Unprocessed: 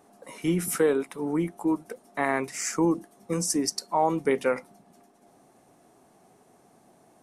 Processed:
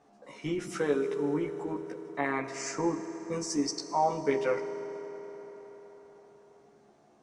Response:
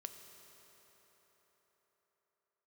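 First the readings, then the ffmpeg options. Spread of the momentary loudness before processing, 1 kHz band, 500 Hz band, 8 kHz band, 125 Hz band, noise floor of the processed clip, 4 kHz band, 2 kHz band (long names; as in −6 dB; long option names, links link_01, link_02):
8 LU, −3.0 dB, −3.0 dB, −8.5 dB, −7.0 dB, −62 dBFS, −4.0 dB, −4.0 dB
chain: -filter_complex "[0:a]lowpass=frequency=6700:width=0.5412,lowpass=frequency=6700:width=1.3066,asplit=2[link_01][link_02];[1:a]atrim=start_sample=2205,adelay=14[link_03];[link_02][link_03]afir=irnorm=-1:irlink=0,volume=4.5dB[link_04];[link_01][link_04]amix=inputs=2:normalize=0,volume=-7dB"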